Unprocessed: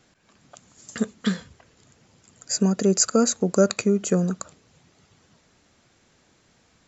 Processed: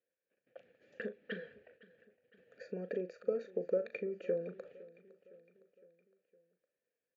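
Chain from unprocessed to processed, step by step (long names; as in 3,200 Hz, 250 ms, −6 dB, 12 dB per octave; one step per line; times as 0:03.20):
noise gate −55 dBFS, range −23 dB
high-shelf EQ 5,000 Hz +7 dB
downward compressor 6 to 1, threshold −26 dBFS, peak gain reduction 14.5 dB
formant filter e
high-frequency loss of the air 400 metres
double-tracking delay 37 ms −11.5 dB
repeating echo 490 ms, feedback 55%, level −20.5 dB
wrong playback speed 25 fps video run at 24 fps
level +6.5 dB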